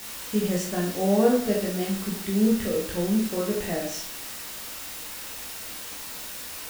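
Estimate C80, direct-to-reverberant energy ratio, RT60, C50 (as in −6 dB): 9.5 dB, −3.5 dB, 0.60 s, 5.0 dB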